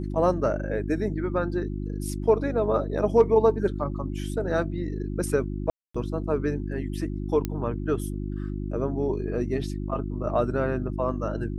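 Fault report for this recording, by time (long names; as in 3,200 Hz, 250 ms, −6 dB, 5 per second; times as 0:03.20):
mains hum 50 Hz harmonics 7 −31 dBFS
0:05.70–0:05.95: drop-out 245 ms
0:07.45: click −14 dBFS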